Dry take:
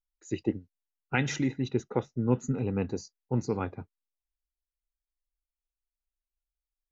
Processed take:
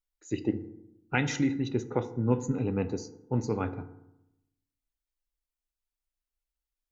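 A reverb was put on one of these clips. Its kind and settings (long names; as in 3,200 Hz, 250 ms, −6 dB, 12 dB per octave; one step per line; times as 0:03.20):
feedback delay network reverb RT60 0.86 s, low-frequency decay 1.25×, high-frequency decay 0.45×, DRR 10 dB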